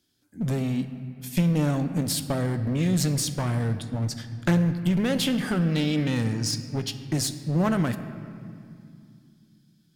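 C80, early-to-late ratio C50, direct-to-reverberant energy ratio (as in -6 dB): 11.5 dB, 10.5 dB, 9.0 dB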